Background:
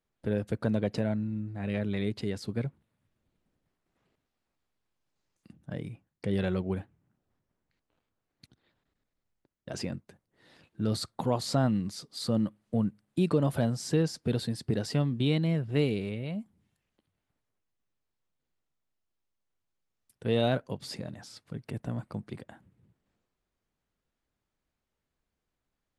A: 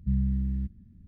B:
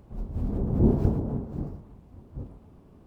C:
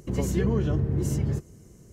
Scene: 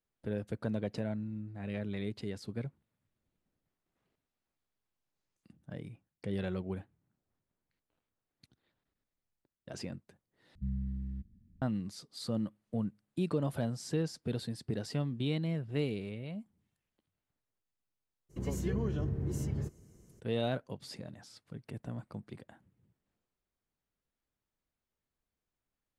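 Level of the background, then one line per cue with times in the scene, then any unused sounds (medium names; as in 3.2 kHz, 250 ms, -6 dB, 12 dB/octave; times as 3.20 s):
background -6.5 dB
10.55 s: replace with A -10 dB
18.29 s: add C -9 dB, fades 0.02 s
not used: B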